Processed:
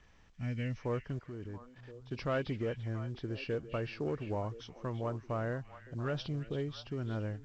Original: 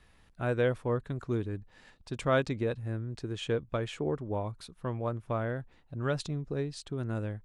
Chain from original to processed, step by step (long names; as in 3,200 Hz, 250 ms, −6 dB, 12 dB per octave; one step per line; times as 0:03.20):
hearing-aid frequency compression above 2,000 Hz 1.5 to 1
0:00.36–0:00.77: gain on a spectral selection 290–1,700 Hz −17 dB
in parallel at +1.5 dB: brickwall limiter −25.5 dBFS, peak gain reduction 10 dB
0:01.19–0:02.12: on the sum: output level in coarse steps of 17 dB
soft clipping −15.5 dBFS, distortion −23 dB
on a send: echo through a band-pass that steps 340 ms, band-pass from 2,500 Hz, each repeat −1.4 octaves, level −8 dB
on the sum: level −8.5 dB
mu-law 128 kbit/s 16,000 Hz